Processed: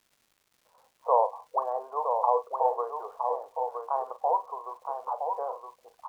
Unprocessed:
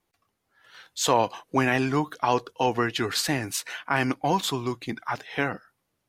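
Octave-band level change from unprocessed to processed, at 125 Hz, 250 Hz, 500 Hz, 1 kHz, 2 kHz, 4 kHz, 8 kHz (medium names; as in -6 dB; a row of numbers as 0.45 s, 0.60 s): under -40 dB, under -30 dB, -1.5 dB, +0.5 dB, under -30 dB, under -35 dB, under -30 dB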